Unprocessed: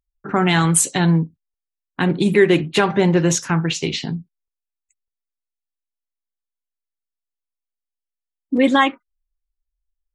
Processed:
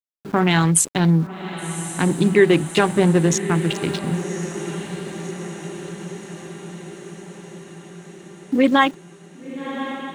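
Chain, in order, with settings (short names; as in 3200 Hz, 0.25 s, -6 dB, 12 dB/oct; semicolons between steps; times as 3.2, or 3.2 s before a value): Wiener smoothing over 41 samples; sample gate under -37.5 dBFS; on a send: diffused feedback echo 1.111 s, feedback 63%, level -11 dB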